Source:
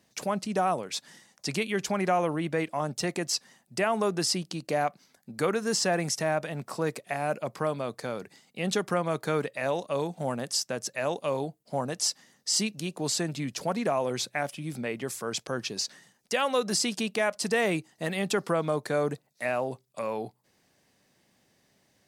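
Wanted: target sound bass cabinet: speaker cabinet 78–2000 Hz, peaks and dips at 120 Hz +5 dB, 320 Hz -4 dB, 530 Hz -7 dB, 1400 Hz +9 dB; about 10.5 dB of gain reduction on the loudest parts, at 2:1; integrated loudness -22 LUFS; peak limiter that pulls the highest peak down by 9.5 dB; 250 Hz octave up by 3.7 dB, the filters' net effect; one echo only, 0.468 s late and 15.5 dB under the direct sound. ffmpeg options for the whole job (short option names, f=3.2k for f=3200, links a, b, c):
-af "equalizer=f=250:t=o:g=6.5,acompressor=threshold=-40dB:ratio=2,alimiter=level_in=5dB:limit=-24dB:level=0:latency=1,volume=-5dB,highpass=f=78:w=0.5412,highpass=f=78:w=1.3066,equalizer=f=120:t=q:w=4:g=5,equalizer=f=320:t=q:w=4:g=-4,equalizer=f=530:t=q:w=4:g=-7,equalizer=f=1.4k:t=q:w=4:g=9,lowpass=f=2k:w=0.5412,lowpass=f=2k:w=1.3066,aecho=1:1:468:0.168,volume=19.5dB"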